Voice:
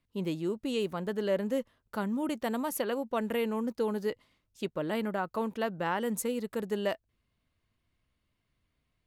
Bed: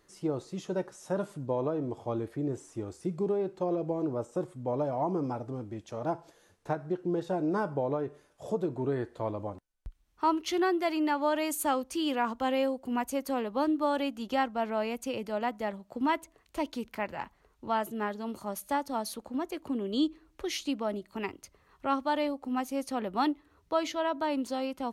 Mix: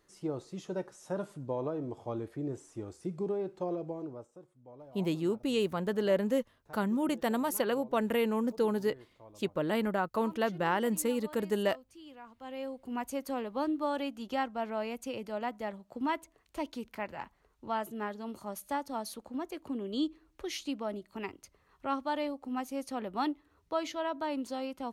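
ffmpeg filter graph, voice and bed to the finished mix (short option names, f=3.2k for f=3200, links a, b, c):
-filter_complex "[0:a]adelay=4800,volume=1.5dB[a];[1:a]volume=13dB,afade=t=out:st=3.67:d=0.71:silence=0.141254,afade=t=in:st=12.35:d=0.74:silence=0.141254[b];[a][b]amix=inputs=2:normalize=0"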